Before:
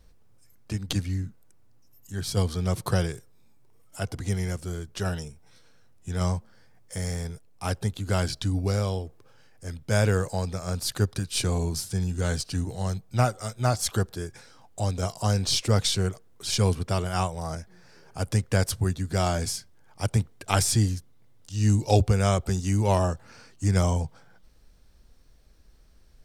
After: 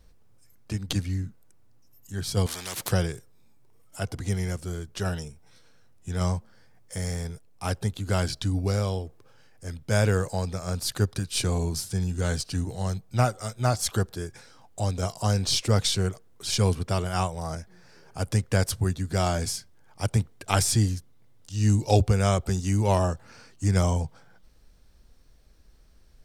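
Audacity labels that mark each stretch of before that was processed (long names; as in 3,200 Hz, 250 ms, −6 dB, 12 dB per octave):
2.460000	2.920000	every bin compressed towards the loudest bin 4 to 1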